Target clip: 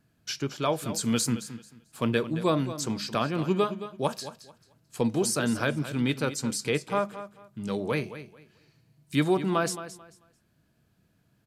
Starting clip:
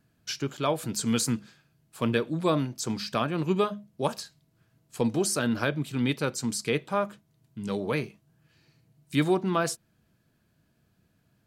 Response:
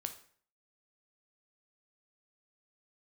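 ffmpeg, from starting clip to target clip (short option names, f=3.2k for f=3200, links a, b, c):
-filter_complex "[0:a]asplit=2[a][b];[b]aecho=0:1:220|440|660:0.224|0.0515|0.0118[c];[a][c]amix=inputs=2:normalize=0,aresample=32000,aresample=44100"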